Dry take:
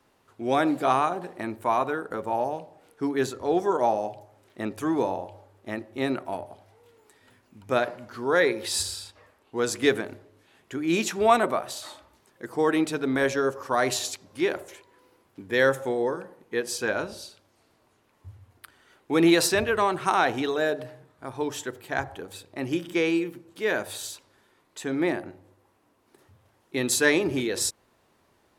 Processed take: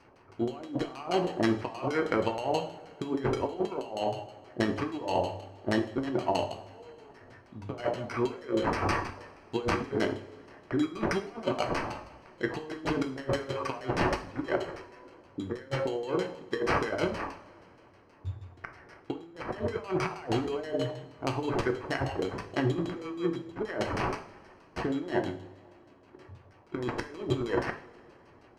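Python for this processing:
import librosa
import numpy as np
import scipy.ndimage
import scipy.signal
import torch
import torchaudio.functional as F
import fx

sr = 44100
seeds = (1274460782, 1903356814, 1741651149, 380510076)

y = fx.over_compress(x, sr, threshold_db=-31.0, ratio=-0.5)
y = fx.sample_hold(y, sr, seeds[0], rate_hz=3600.0, jitter_pct=0)
y = fx.filter_lfo_lowpass(y, sr, shape='saw_down', hz=6.3, low_hz=520.0, high_hz=6500.0, q=0.95)
y = fx.rev_double_slope(y, sr, seeds[1], early_s=0.42, late_s=3.1, knee_db=-22, drr_db=5.5)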